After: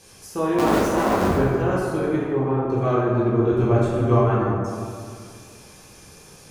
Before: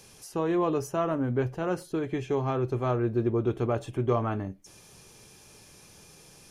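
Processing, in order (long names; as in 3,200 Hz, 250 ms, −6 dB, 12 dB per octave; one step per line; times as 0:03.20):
0:00.58–0:01.36: sub-harmonics by changed cycles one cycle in 3, inverted
0:03.52–0:04.18: low-shelf EQ 110 Hz +10 dB
tape wow and flutter 29 cents
0:02.16–0:02.70: head-to-tape spacing loss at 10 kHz 44 dB
dense smooth reverb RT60 2.2 s, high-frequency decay 0.45×, DRR −7 dB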